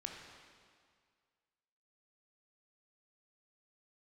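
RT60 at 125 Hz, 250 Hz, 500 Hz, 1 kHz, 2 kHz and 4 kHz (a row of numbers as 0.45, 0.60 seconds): 1.9, 1.9, 2.0, 2.0, 1.9, 1.8 seconds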